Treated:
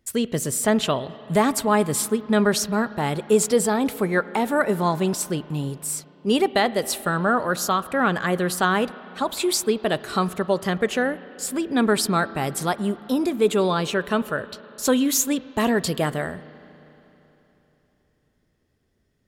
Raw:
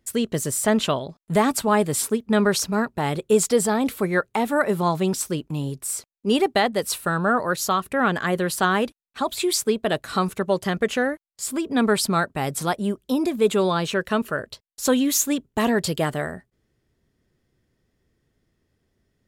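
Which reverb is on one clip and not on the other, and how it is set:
spring reverb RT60 3.5 s, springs 33/39 ms, chirp 20 ms, DRR 16 dB

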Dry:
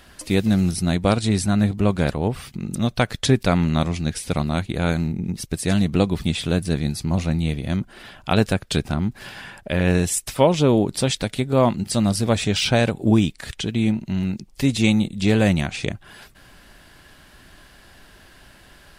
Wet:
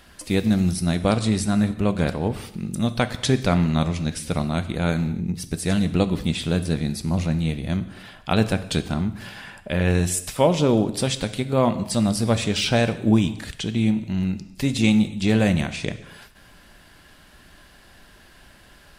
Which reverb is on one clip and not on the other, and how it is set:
reverb whose tail is shaped and stops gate 310 ms falling, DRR 10.5 dB
level −2 dB

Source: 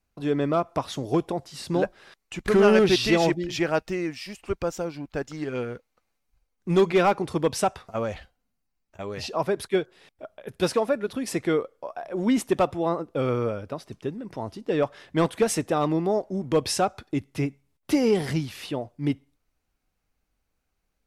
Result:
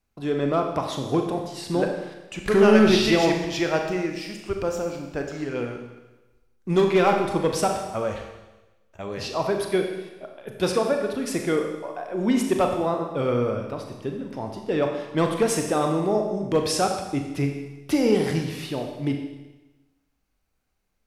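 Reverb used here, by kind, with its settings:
four-comb reverb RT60 1.1 s, combs from 29 ms, DRR 3 dB

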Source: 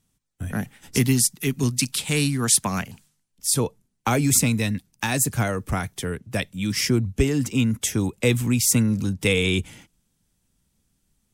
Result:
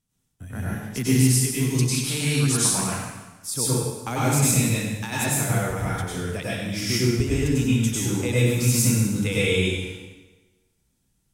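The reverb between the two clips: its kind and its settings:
dense smooth reverb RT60 1.2 s, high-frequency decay 0.9×, pre-delay 85 ms, DRR −8 dB
level −9 dB

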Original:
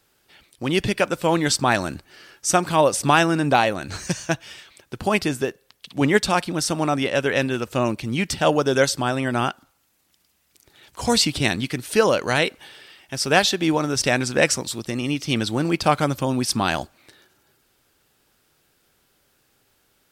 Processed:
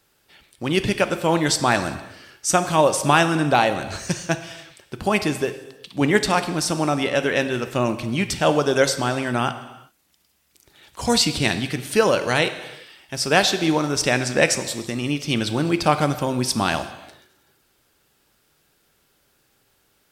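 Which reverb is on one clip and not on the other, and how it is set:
reverb whose tail is shaped and stops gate 420 ms falling, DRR 9.5 dB

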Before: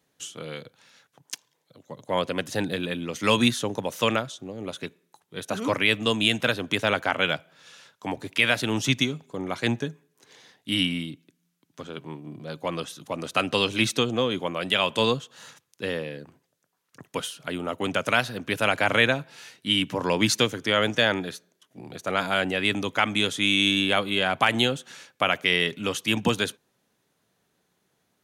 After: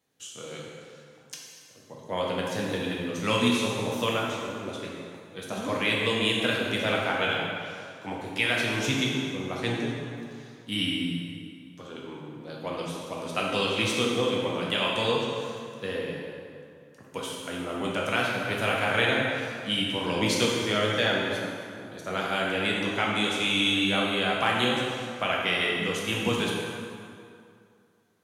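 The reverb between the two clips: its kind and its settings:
dense smooth reverb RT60 2.4 s, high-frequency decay 0.7×, DRR −3.5 dB
level −7 dB

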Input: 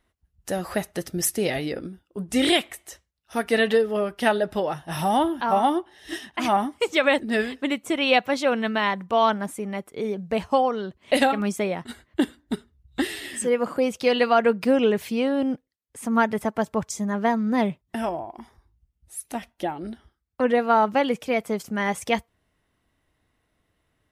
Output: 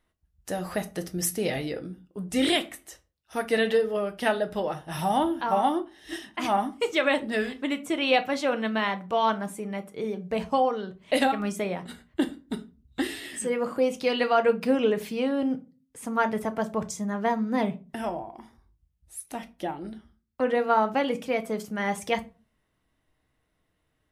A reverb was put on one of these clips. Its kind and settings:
rectangular room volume 140 cubic metres, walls furnished, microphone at 0.54 metres
level −4 dB

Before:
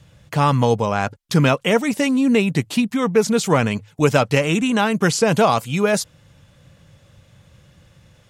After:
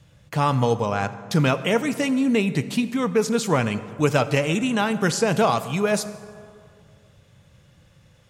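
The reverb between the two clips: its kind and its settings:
dense smooth reverb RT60 2.2 s, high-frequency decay 0.5×, DRR 12 dB
level −4 dB

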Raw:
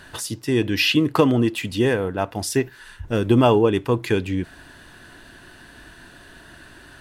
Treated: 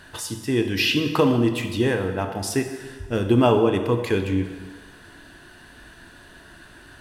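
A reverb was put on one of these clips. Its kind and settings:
dense smooth reverb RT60 1.5 s, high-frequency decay 0.85×, DRR 5.5 dB
level −2.5 dB

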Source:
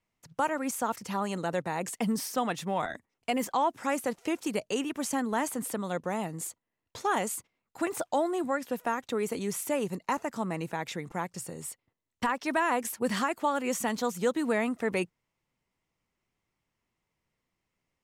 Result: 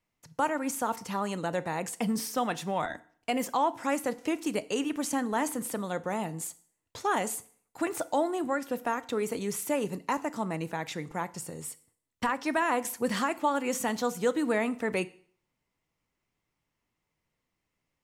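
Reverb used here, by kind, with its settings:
feedback delay network reverb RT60 0.52 s, low-frequency decay 1.05×, high-frequency decay 0.95×, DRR 13.5 dB

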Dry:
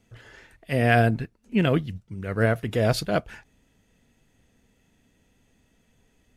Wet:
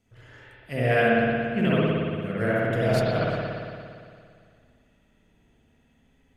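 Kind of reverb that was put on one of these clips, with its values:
spring reverb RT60 2.2 s, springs 57 ms, chirp 65 ms, DRR −8 dB
level −7.5 dB

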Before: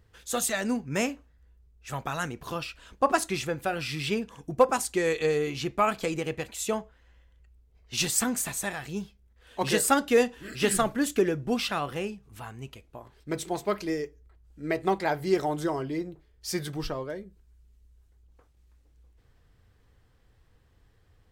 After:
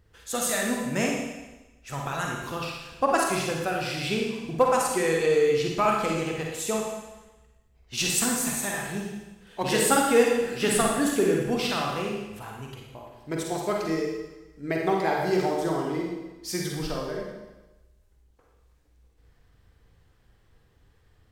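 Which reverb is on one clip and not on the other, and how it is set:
four-comb reverb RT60 1.1 s, DRR −1 dB
level −1 dB

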